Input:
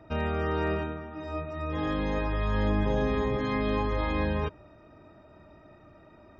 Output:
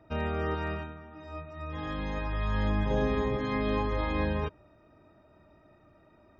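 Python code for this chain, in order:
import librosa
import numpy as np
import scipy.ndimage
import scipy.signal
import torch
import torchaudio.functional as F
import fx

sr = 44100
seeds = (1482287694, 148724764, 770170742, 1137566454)

y = fx.dynamic_eq(x, sr, hz=400.0, q=1.2, threshold_db=-44.0, ratio=4.0, max_db=-7, at=(0.54, 2.91))
y = fx.upward_expand(y, sr, threshold_db=-37.0, expansion=1.5)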